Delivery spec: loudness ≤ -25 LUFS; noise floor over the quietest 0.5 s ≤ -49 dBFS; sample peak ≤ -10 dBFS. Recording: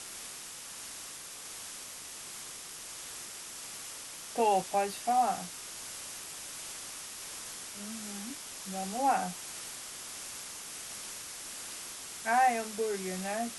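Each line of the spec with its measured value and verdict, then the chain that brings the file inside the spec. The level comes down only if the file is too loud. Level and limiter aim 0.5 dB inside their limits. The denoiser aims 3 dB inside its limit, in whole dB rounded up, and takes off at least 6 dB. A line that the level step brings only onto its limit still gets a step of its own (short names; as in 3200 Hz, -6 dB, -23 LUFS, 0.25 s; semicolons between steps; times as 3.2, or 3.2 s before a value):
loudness -35.5 LUFS: OK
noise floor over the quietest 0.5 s -45 dBFS: fail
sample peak -16.0 dBFS: OK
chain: denoiser 7 dB, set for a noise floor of -45 dBFS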